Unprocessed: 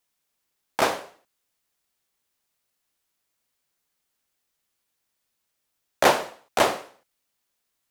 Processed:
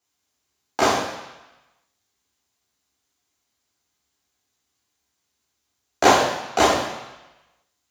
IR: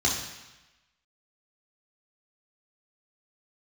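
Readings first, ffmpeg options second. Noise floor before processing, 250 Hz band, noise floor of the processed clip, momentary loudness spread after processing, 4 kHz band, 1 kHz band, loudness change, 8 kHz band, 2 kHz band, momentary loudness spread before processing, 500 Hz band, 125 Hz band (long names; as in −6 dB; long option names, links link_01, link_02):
−78 dBFS, +7.0 dB, −76 dBFS, 19 LU, +4.5 dB, +5.0 dB, +3.5 dB, +6.0 dB, +3.5 dB, 15 LU, +3.5 dB, +7.0 dB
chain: -filter_complex "[1:a]atrim=start_sample=2205[link_01];[0:a][link_01]afir=irnorm=-1:irlink=0,volume=-8dB"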